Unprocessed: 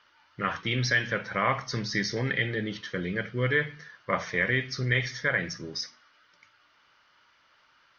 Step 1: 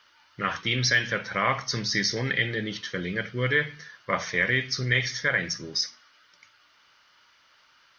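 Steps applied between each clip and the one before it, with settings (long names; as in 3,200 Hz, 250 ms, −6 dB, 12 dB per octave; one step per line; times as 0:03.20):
high-shelf EQ 3,300 Hz +10 dB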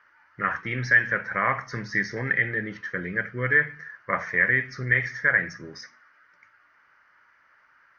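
high shelf with overshoot 2,500 Hz −11.5 dB, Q 3
level −2 dB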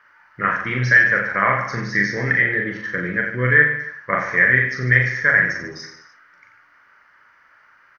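reverse bouncing-ball delay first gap 40 ms, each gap 1.2×, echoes 5
level +4.5 dB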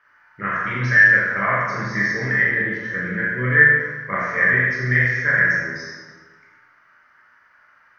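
dense smooth reverb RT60 1.4 s, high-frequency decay 0.65×, DRR −3.5 dB
level −7 dB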